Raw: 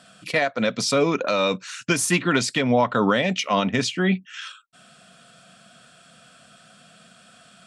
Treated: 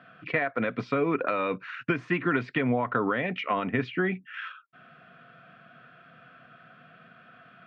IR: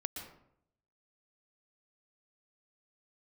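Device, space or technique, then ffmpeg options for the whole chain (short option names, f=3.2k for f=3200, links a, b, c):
bass amplifier: -af "acompressor=threshold=-22dB:ratio=6,highpass=72,equalizer=f=76:t=q:w=4:g=-10,equalizer=f=200:t=q:w=4:g=-9,equalizer=f=580:t=q:w=4:g=-7,equalizer=f=880:t=q:w=4:g=-5,lowpass=f=2.2k:w=0.5412,lowpass=f=2.2k:w=1.3066,volume=2.5dB"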